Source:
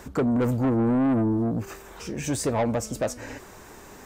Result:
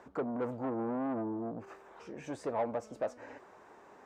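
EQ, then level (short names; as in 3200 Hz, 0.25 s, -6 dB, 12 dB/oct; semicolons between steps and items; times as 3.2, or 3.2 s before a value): band-pass 770 Hz, Q 0.82; -6.5 dB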